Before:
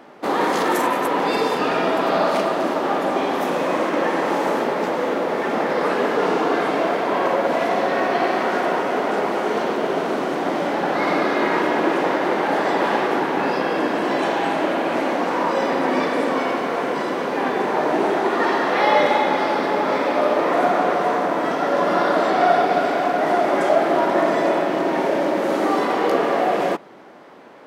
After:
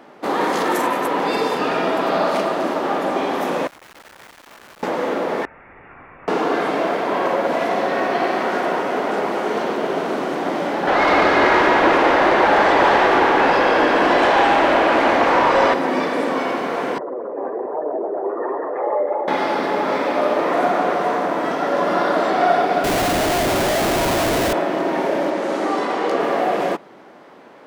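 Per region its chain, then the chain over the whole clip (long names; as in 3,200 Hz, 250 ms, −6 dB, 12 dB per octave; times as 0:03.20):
0:03.67–0:04.83: guitar amp tone stack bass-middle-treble 5-5-5 + comparator with hysteresis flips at −45 dBFS + saturating transformer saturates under 1,000 Hz
0:05.45–0:06.28: inverse Chebyshev high-pass filter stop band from 900 Hz, stop band 60 dB + voice inversion scrambler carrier 4,000 Hz
0:10.87–0:15.74: mid-hump overdrive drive 16 dB, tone 2,900 Hz, clips at −6.5 dBFS + echo with a time of its own for lows and highs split 820 Hz, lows 111 ms, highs 147 ms, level −6.5 dB
0:16.98–0:19.28: spectral envelope exaggerated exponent 2 + low-pass filter 1,300 Hz + flanger 1.2 Hz, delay 6.1 ms, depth 4.5 ms, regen +49%
0:22.84–0:24.53: low-pass filter 2,600 Hz + comparator with hysteresis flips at −25 dBFS
0:25.30–0:26.20: Chebyshev low-pass filter 8,400 Hz + low-shelf EQ 110 Hz −8 dB
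whole clip: no processing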